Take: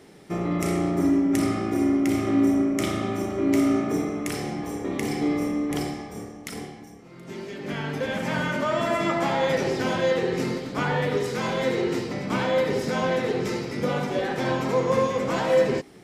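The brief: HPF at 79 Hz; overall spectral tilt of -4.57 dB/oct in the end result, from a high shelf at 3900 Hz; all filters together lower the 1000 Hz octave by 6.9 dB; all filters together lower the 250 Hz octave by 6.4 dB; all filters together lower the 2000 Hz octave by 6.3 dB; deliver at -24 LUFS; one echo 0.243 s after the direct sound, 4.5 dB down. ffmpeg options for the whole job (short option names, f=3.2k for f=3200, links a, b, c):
-af "highpass=79,equalizer=f=250:t=o:g=-7.5,equalizer=f=1k:t=o:g=-7.5,equalizer=f=2k:t=o:g=-6.5,highshelf=f=3.9k:g=5,aecho=1:1:243:0.596,volume=4.5dB"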